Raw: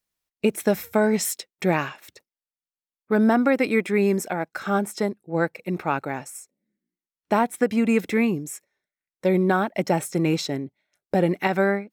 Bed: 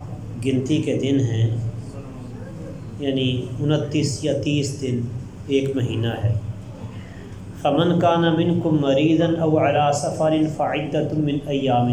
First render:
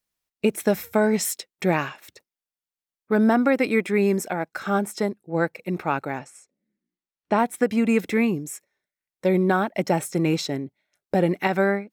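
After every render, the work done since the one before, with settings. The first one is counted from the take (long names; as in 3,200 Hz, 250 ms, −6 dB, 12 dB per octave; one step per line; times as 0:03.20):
0:06.19–0:07.39: high-frequency loss of the air 81 metres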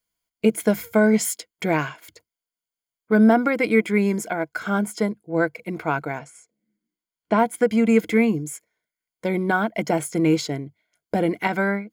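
EQ curve with evenly spaced ripples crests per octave 1.8, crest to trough 10 dB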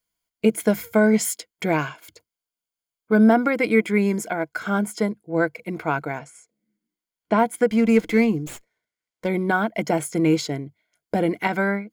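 0:01.72–0:03.28: notch filter 1,900 Hz, Q 7.9
0:07.70–0:09.27: windowed peak hold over 3 samples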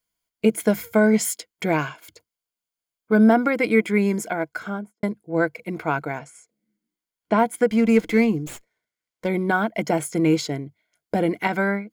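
0:04.46–0:05.03: fade out and dull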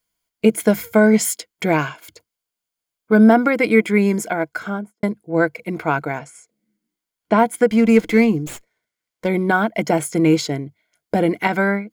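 level +4 dB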